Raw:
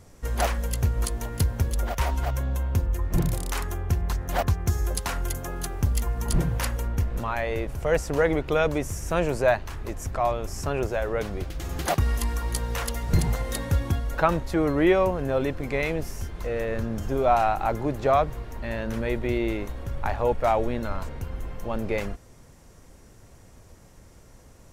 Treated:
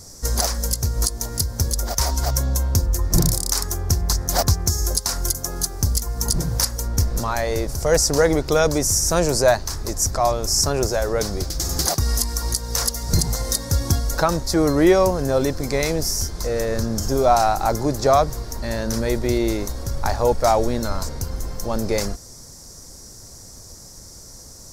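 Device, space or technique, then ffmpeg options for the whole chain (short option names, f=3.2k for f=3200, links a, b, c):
over-bright horn tweeter: -af "highshelf=f=3.8k:t=q:w=3:g=10.5,alimiter=limit=-10.5dB:level=0:latency=1:release=383,volume=5.5dB"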